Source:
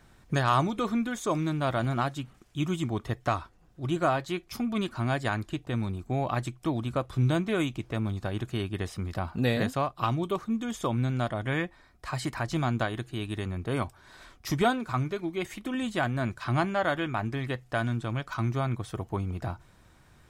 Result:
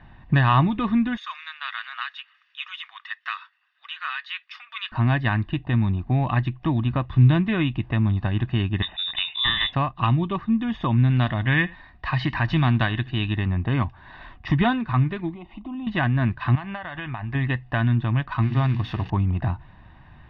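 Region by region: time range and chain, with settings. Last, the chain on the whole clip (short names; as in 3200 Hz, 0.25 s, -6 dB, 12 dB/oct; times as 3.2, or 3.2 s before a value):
1.17–4.92 Chebyshev high-pass 1300 Hz, order 4 + high shelf 5900 Hz +12 dB
8.82–9.73 bell 410 Hz -11 dB 0.8 oct + inverted band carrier 3700 Hz
11.1–13.33 high shelf 2600 Hz +9.5 dB + echo 78 ms -21.5 dB
15.34–15.87 compressor 2.5:1, threshold -39 dBFS + air absorption 330 m + fixed phaser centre 460 Hz, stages 6
16.55–17.35 bell 290 Hz -9 dB 2.5 oct + compressor 12:1, threshold -34 dBFS
18.42–19.1 switching spikes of -26 dBFS + notches 60/120/180/240/300/360/420/480 Hz
whole clip: inverse Chebyshev low-pass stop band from 7500 Hz, stop band 50 dB; dynamic EQ 710 Hz, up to -8 dB, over -43 dBFS, Q 1.2; comb 1.1 ms, depth 63%; gain +7 dB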